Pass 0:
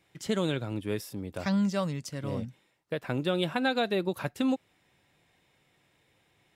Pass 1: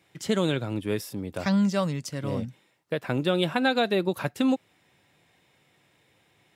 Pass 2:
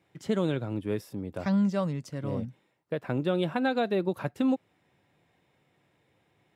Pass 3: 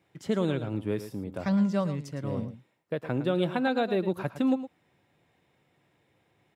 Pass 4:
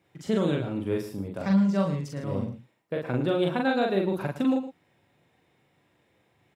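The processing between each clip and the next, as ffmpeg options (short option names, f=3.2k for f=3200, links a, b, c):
-af "highpass=78,volume=4dB"
-af "highshelf=f=2k:g=-10.5,volume=-2dB"
-af "aecho=1:1:111:0.251"
-filter_complex "[0:a]asplit=2[a][b];[b]adelay=41,volume=-2dB[c];[a][c]amix=inputs=2:normalize=0"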